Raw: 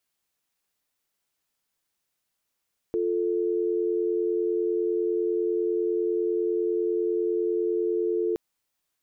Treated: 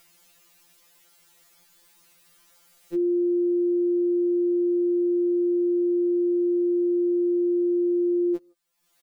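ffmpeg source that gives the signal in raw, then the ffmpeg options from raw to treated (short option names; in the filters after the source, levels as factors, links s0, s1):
-f lavfi -i "aevalsrc='0.0531*(sin(2*PI*350*t)+sin(2*PI*440*t))':d=5.42:s=44100"
-filter_complex "[0:a]acompressor=mode=upward:threshold=0.0141:ratio=2.5,asplit=2[s0][s1];[s1]adelay=160,highpass=300,lowpass=3400,asoftclip=type=hard:threshold=0.0398,volume=0.0398[s2];[s0][s2]amix=inputs=2:normalize=0,afftfilt=real='re*2.83*eq(mod(b,8),0)':imag='im*2.83*eq(mod(b,8),0)':win_size=2048:overlap=0.75"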